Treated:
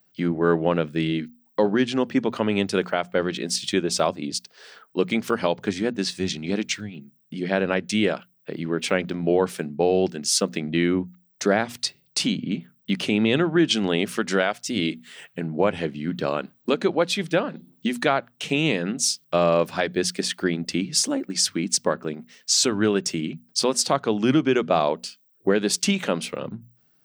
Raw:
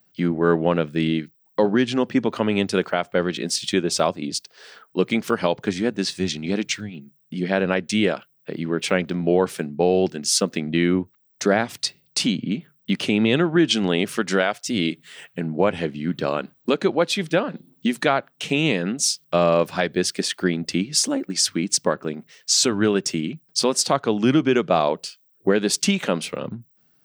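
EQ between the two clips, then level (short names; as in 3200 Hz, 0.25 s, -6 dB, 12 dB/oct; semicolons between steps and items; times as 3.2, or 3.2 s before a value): notches 60/120/180/240 Hz; -1.5 dB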